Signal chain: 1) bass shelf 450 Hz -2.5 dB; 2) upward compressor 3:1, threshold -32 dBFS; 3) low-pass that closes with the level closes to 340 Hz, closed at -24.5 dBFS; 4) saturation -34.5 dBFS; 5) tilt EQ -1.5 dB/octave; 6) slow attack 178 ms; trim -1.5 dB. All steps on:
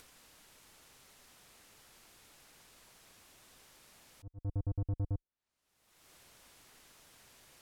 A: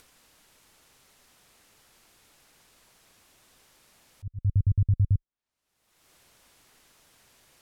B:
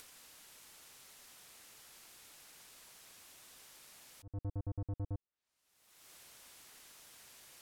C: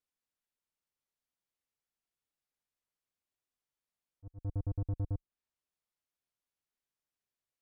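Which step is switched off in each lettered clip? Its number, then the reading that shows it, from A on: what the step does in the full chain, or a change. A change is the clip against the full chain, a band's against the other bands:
4, distortion -8 dB; 5, 125 Hz band -5.0 dB; 2, momentary loudness spread change -6 LU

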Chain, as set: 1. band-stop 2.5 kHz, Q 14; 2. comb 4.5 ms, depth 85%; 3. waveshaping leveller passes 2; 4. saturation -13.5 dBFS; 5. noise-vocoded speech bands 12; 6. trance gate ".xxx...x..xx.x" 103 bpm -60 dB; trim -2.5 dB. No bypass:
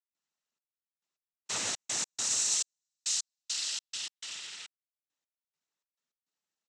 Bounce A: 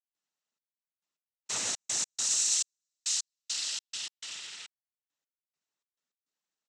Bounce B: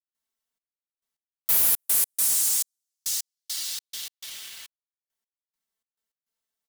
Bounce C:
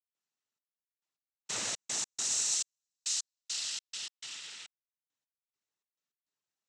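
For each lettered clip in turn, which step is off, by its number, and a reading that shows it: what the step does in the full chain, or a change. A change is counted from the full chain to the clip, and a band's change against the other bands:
4, distortion -16 dB; 5, 8 kHz band +4.5 dB; 2, momentary loudness spread change +2 LU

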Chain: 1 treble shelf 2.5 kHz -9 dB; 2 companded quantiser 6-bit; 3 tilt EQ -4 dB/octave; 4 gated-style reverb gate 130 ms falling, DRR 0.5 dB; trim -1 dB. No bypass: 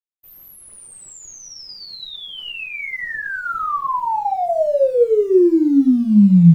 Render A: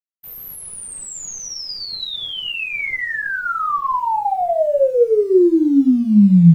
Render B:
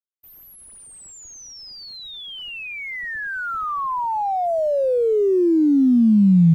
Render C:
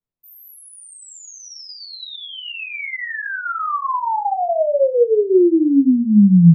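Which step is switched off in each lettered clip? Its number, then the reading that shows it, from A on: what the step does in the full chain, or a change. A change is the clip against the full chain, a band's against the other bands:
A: 1, 8 kHz band +7.0 dB; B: 4, crest factor change -4.0 dB; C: 2, distortion -25 dB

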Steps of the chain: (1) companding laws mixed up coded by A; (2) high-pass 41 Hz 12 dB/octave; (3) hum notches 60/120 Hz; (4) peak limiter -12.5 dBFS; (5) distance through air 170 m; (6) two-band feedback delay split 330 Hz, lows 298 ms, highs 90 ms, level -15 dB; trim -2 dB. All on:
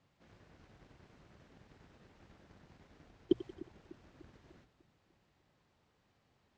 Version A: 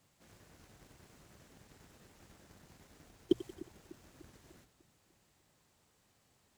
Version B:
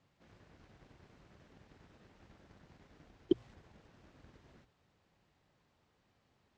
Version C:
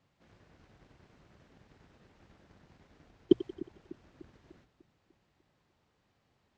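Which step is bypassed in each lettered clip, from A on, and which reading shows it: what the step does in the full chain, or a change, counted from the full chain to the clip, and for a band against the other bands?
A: 5, 4 kHz band +3.0 dB; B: 6, echo-to-direct -13.5 dB to none; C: 4, mean gain reduction 4.5 dB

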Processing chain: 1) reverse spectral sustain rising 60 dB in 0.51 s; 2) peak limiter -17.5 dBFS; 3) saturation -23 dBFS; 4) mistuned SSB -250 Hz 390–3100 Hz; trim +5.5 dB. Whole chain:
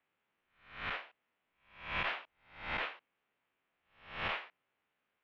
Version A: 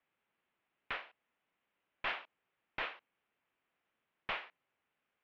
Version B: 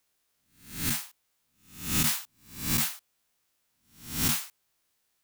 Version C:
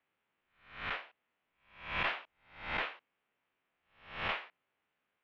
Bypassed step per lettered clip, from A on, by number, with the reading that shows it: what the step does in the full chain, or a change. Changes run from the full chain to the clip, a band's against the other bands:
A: 1, 125 Hz band -9.0 dB; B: 4, 250 Hz band +19.0 dB; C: 2, momentary loudness spread change +2 LU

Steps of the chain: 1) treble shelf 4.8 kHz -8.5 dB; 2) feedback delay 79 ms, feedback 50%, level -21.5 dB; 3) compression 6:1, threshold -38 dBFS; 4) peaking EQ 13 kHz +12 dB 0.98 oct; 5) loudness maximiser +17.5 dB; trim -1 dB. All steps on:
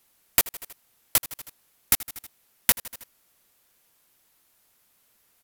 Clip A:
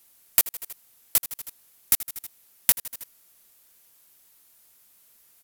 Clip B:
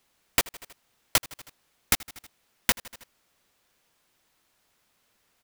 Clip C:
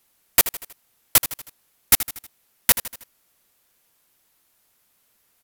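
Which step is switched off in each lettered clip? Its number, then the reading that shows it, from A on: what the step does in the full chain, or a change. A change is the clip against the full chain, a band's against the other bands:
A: 1, 8 kHz band +6.0 dB; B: 4, 8 kHz band -6.0 dB; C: 3, mean gain reduction 7.0 dB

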